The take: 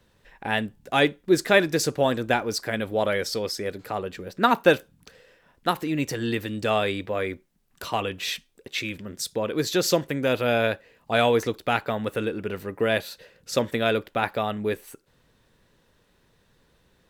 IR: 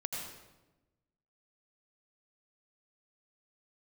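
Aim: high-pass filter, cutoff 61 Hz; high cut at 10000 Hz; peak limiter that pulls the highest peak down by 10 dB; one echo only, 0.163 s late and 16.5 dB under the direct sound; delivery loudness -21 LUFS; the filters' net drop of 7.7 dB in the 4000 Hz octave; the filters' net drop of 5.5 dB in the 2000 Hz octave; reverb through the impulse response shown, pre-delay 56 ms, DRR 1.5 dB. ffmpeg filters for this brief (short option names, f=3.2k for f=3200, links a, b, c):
-filter_complex "[0:a]highpass=61,lowpass=10k,equalizer=f=2k:t=o:g=-5.5,equalizer=f=4k:t=o:g=-8,alimiter=limit=-16dB:level=0:latency=1,aecho=1:1:163:0.15,asplit=2[a][b];[1:a]atrim=start_sample=2205,adelay=56[c];[b][c]afir=irnorm=-1:irlink=0,volume=-3.5dB[d];[a][d]amix=inputs=2:normalize=0,volume=6dB"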